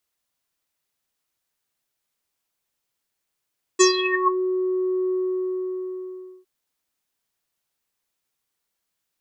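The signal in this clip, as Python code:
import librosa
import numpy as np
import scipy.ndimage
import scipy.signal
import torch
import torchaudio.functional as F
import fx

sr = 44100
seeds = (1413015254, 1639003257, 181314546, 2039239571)

y = fx.sub_voice(sr, note=66, wave='square', cutoff_hz=680.0, q=11.0, env_oct=3.5, env_s=0.6, attack_ms=19.0, decay_s=0.12, sustain_db=-12.0, release_s=1.34, note_s=1.32, slope=24)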